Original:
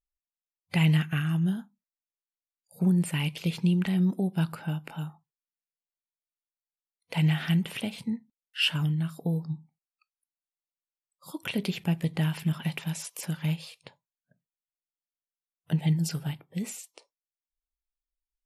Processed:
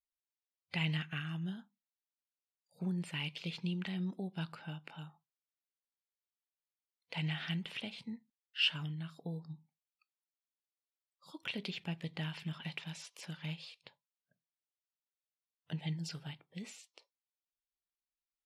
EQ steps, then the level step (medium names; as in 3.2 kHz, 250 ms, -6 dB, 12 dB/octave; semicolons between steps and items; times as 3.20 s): band-pass filter 4.1 kHz, Q 1.2; tilt EQ -4.5 dB/octave; +4.5 dB